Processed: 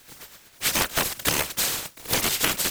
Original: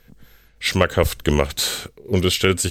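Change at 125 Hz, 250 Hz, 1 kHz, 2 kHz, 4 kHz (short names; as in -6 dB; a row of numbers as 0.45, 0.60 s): -15.0, -12.0, -3.0, -2.0, -2.5 dB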